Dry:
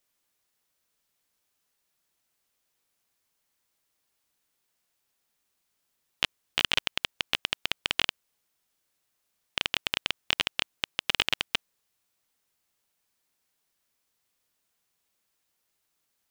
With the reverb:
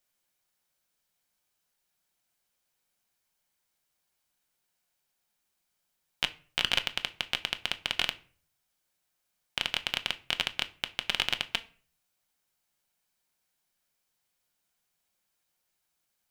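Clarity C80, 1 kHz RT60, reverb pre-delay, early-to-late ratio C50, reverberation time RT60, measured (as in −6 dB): 23.5 dB, 0.40 s, 5 ms, 18.5 dB, 0.45 s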